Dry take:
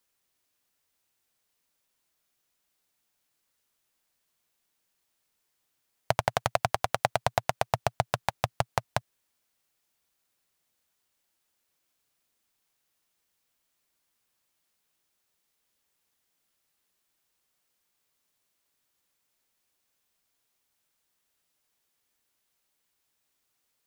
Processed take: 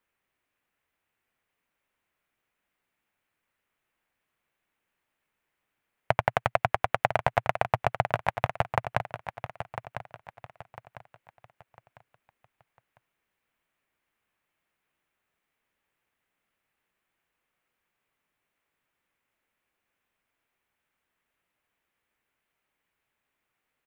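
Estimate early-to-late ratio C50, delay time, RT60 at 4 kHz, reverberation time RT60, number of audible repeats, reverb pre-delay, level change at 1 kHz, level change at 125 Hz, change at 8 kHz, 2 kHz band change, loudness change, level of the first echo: no reverb, 1001 ms, no reverb, no reverb, 3, no reverb, +2.0 dB, +1.5 dB, under -10 dB, +3.5 dB, +1.0 dB, -10.0 dB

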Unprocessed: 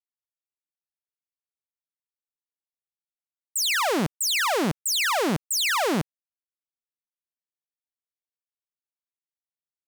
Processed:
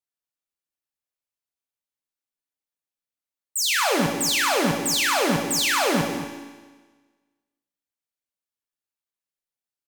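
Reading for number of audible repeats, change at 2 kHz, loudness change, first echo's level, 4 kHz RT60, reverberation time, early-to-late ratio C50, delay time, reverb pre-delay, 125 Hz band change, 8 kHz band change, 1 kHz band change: 1, +2.5 dB, +2.0 dB, -11.0 dB, 1.3 s, 1.4 s, 4.0 dB, 226 ms, 3 ms, +1.5 dB, +2.5 dB, +2.0 dB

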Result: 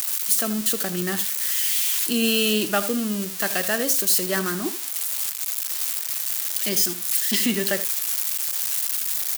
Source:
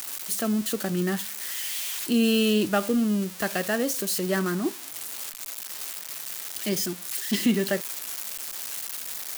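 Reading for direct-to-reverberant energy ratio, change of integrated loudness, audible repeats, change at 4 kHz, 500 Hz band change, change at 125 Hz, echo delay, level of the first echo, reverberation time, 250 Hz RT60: no reverb, +5.5 dB, 1, +6.0 dB, 0.0 dB, -2.5 dB, 79 ms, -14.5 dB, no reverb, no reverb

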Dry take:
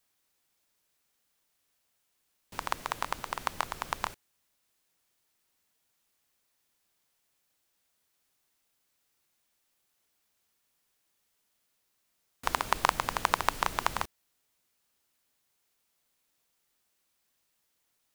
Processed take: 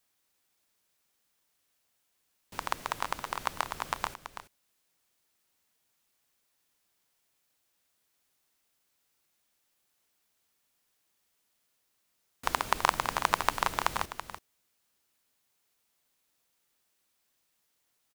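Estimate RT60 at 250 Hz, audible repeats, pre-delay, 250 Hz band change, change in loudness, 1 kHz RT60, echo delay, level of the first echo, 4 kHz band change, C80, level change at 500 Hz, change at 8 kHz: no reverb, 1, no reverb, 0.0 dB, +0.5 dB, no reverb, 331 ms, -10.5 dB, +0.5 dB, no reverb, +0.5 dB, +0.5 dB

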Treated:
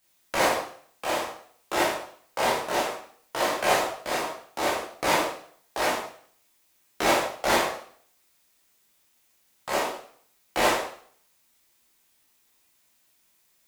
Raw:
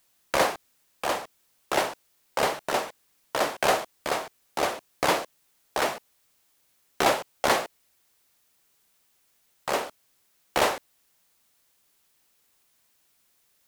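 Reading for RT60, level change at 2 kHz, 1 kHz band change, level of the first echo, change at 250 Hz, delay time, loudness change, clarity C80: 0.55 s, +2.0 dB, +1.0 dB, no echo, +2.5 dB, no echo, +1.0 dB, 7.5 dB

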